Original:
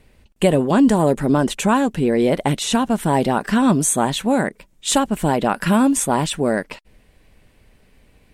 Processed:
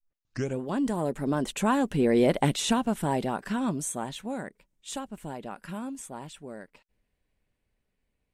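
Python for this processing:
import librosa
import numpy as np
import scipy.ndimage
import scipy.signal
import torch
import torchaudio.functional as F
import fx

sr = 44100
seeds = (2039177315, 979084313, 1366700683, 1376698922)

y = fx.tape_start_head(x, sr, length_s=0.62)
y = fx.doppler_pass(y, sr, speed_mps=6, closest_m=3.2, pass_at_s=2.28)
y = F.gain(torch.from_numpy(y), -4.5).numpy()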